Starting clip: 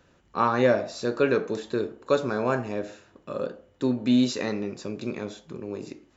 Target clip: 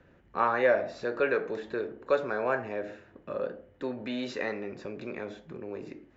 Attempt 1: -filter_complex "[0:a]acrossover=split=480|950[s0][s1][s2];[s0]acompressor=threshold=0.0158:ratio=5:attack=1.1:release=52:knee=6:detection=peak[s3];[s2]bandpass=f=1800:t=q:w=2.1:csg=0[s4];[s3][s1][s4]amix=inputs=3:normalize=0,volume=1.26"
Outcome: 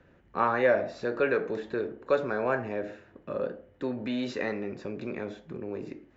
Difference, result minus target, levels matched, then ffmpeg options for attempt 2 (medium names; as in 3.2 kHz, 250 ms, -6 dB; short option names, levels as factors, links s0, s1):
compression: peak gain reduction -5.5 dB
-filter_complex "[0:a]acrossover=split=480|950[s0][s1][s2];[s0]acompressor=threshold=0.00708:ratio=5:attack=1.1:release=52:knee=6:detection=peak[s3];[s2]bandpass=f=1800:t=q:w=2.1:csg=0[s4];[s3][s1][s4]amix=inputs=3:normalize=0,volume=1.26"